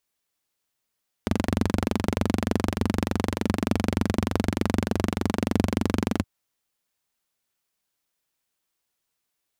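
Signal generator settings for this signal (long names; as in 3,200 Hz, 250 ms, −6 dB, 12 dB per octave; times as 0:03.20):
pulse-train model of a single-cylinder engine, steady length 4.97 s, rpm 2,800, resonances 93/210 Hz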